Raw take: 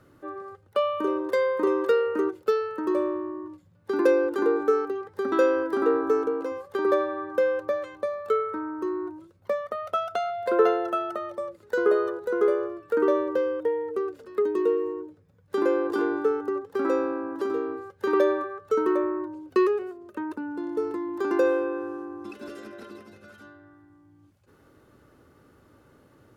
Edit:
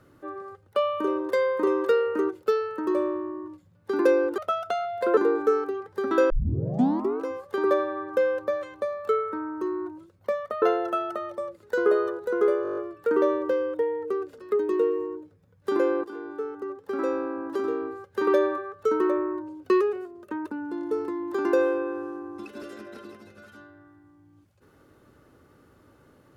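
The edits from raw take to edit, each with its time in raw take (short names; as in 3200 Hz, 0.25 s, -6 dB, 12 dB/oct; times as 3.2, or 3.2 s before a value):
5.51 tape start 0.91 s
9.83–10.62 move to 4.38
12.63 stutter 0.02 s, 8 plays
15.9–17.39 fade in, from -15 dB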